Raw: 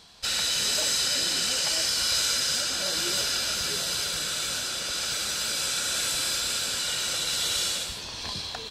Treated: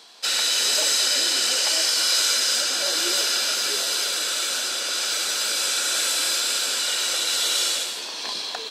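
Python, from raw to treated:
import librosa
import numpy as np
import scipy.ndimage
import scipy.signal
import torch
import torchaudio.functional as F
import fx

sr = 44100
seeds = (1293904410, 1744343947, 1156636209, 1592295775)

p1 = scipy.signal.sosfilt(scipy.signal.butter(4, 290.0, 'highpass', fs=sr, output='sos'), x)
p2 = p1 + fx.echo_single(p1, sr, ms=220, db=-13.5, dry=0)
y = p2 * 10.0 ** (4.5 / 20.0)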